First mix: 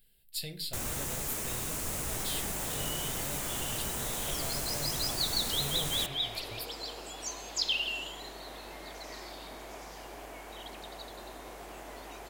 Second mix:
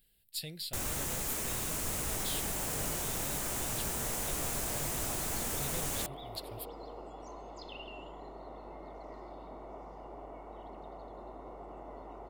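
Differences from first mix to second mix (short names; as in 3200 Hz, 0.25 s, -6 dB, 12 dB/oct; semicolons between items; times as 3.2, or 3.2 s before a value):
second sound: add polynomial smoothing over 65 samples; reverb: off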